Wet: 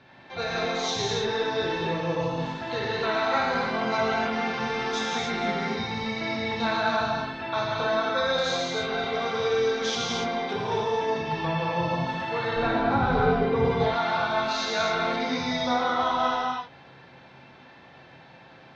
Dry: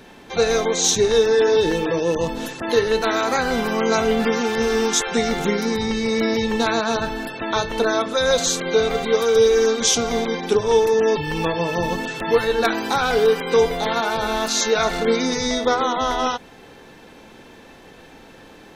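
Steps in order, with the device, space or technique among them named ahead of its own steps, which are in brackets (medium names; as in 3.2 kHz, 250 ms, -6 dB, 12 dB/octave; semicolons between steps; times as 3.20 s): guitar cabinet (cabinet simulation 110–4300 Hz, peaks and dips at 130 Hz +9 dB, 210 Hz -8 dB, 310 Hz -7 dB, 440 Hz -9 dB, 3.1 kHz -4 dB); 12.56–13.65 s: tilt EQ -4.5 dB/octave; gated-style reverb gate 320 ms flat, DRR -4 dB; trim -8 dB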